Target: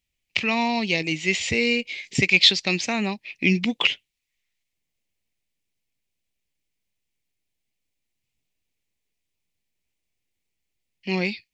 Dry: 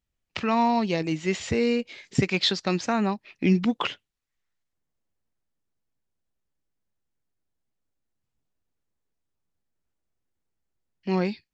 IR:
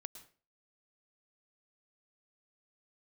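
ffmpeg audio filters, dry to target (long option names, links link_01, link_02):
-af "highshelf=frequency=1800:width_type=q:width=3:gain=7.5,volume=-1dB"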